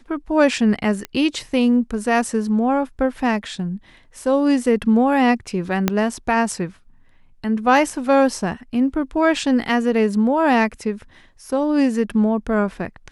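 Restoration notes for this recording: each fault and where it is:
0:01.05: click −12 dBFS
0:05.88: click −3 dBFS

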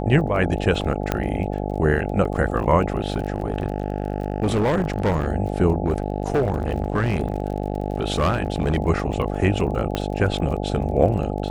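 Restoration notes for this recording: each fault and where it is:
mains buzz 50 Hz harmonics 17 −26 dBFS
surface crackle 26 per second −31 dBFS
0:01.12: click −7 dBFS
0:02.99–0:05.28: clipping −16 dBFS
0:05.86–0:08.78: clipping −15 dBFS
0:09.95: click −9 dBFS

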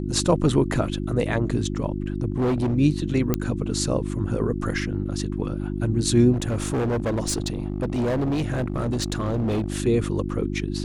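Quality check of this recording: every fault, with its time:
mains hum 50 Hz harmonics 7 −28 dBFS
0:02.30–0:02.75: clipping −19 dBFS
0:03.34: click −7 dBFS
0:06.32–0:09.80: clipping −20.5 dBFS

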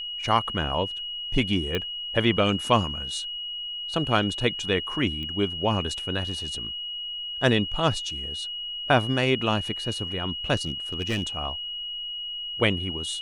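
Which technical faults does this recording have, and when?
whistle 2,900 Hz −31 dBFS
0:01.75: click −13 dBFS
0:05.23: click −25 dBFS
0:10.66–0:11.23: clipping −22 dBFS

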